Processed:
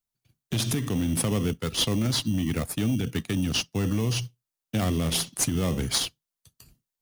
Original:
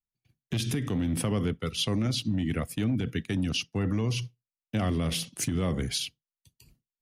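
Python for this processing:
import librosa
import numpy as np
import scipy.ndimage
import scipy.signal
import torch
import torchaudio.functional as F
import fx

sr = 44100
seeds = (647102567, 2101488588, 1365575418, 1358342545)

p1 = fx.sample_hold(x, sr, seeds[0], rate_hz=3000.0, jitter_pct=0)
p2 = x + F.gain(torch.from_numpy(p1), -6.0).numpy()
p3 = fx.high_shelf(p2, sr, hz=3100.0, db=9.5)
y = F.gain(torch.from_numpy(p3), -1.5).numpy()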